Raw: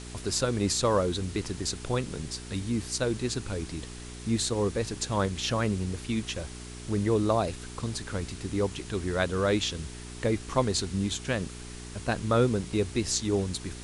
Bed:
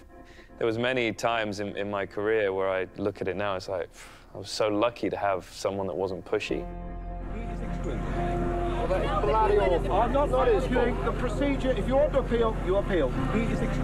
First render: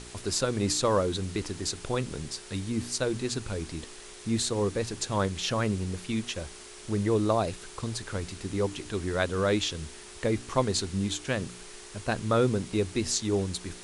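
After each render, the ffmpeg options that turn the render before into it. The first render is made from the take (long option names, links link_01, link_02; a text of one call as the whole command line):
ffmpeg -i in.wav -af "bandreject=frequency=60:width_type=h:width=4,bandreject=frequency=120:width_type=h:width=4,bandreject=frequency=180:width_type=h:width=4,bandreject=frequency=240:width_type=h:width=4,bandreject=frequency=300:width_type=h:width=4" out.wav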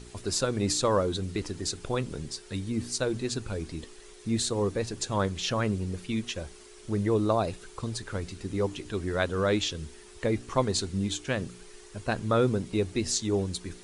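ffmpeg -i in.wav -af "afftdn=noise_reduction=8:noise_floor=-46" out.wav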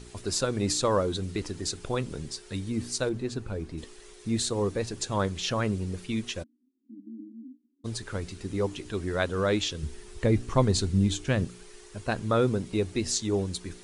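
ffmpeg -i in.wav -filter_complex "[0:a]asettb=1/sr,asplit=3[link_01][link_02][link_03];[link_01]atrim=end=3.094[link_04];[link_02]atrim=start=3.09:end=3.78,asetpts=PTS-STARTPTS,afade=type=in:duration=0.004:curve=qsin,afade=type=out:start_time=0.686:duration=0.004:curve=qsin,highshelf=frequency=2500:gain=-10.5[link_05];[link_03]atrim=start=3.776[link_06];[link_04][link_05]acrossfade=duration=0.004:curve1=hsin:curve2=qsin[link_07];[link_07][link_06]acrossfade=duration=0.004:curve1=qsin:curve2=hsin,asplit=3[link_08][link_09][link_10];[link_08]afade=type=out:start_time=6.42:duration=0.02[link_11];[link_09]asuperpass=centerf=260:order=8:qfactor=4,afade=type=in:start_time=6.42:duration=0.02,afade=type=out:start_time=7.84:duration=0.02[link_12];[link_10]afade=type=in:start_time=7.84:duration=0.02[link_13];[link_11][link_12][link_13]amix=inputs=3:normalize=0,asettb=1/sr,asplit=3[link_14][link_15][link_16];[link_14]atrim=end=9.834[link_17];[link_15]atrim=start=9.83:end=11.45,asetpts=PTS-STARTPTS,afade=type=in:duration=0.004:curve=qsin,afade=type=out:start_time=1.616:duration=0.004:curve=qsin,lowshelf=frequency=200:gain=10.5[link_18];[link_16]atrim=start=11.446[link_19];[link_17][link_18]acrossfade=duration=0.004:curve1=hsin:curve2=qsin[link_20];[link_20][link_19]acrossfade=duration=0.004:curve1=qsin:curve2=hsin" out.wav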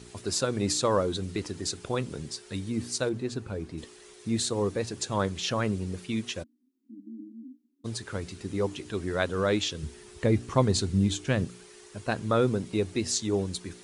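ffmpeg -i in.wav -af "highpass=81" out.wav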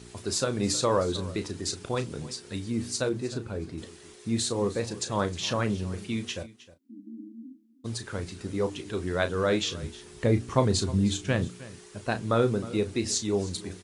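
ffmpeg -i in.wav -filter_complex "[0:a]asplit=2[link_01][link_02];[link_02]adelay=34,volume=-10dB[link_03];[link_01][link_03]amix=inputs=2:normalize=0,aecho=1:1:312:0.126" out.wav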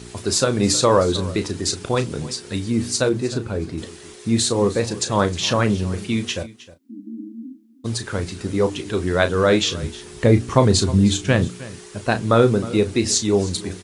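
ffmpeg -i in.wav -af "volume=9dB,alimiter=limit=-2dB:level=0:latency=1" out.wav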